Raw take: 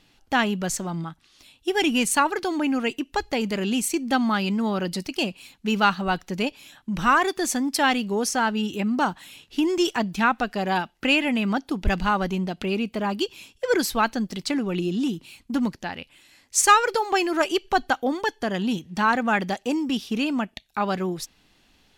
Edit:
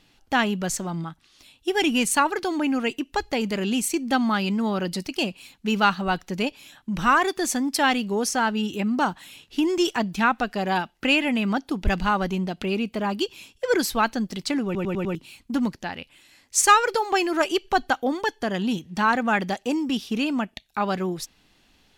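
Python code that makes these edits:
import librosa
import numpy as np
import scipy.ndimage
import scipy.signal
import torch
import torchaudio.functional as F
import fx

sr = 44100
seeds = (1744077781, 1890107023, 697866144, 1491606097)

y = fx.edit(x, sr, fx.stutter_over(start_s=14.65, slice_s=0.1, count=5), tone=tone)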